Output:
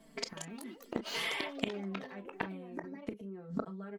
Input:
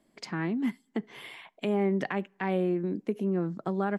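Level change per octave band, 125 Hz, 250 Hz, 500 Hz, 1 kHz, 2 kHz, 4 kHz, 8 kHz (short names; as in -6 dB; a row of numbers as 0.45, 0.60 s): -13.0 dB, -11.5 dB, -11.5 dB, -8.0 dB, -2.5 dB, +6.5 dB, n/a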